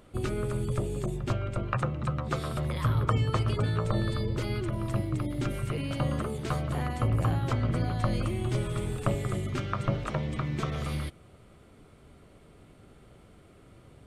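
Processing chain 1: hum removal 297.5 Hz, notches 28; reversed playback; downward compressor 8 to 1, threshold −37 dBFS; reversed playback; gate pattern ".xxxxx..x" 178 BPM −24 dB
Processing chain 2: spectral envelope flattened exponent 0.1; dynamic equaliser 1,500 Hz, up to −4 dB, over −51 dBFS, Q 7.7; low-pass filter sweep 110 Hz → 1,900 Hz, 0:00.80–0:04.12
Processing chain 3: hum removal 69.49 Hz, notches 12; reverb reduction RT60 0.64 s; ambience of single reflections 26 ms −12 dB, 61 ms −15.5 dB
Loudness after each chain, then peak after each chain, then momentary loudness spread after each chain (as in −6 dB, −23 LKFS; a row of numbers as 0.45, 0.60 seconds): −43.0, −31.5, −32.0 LKFS; −25.5, −11.0, −10.5 dBFS; 16, 13, 6 LU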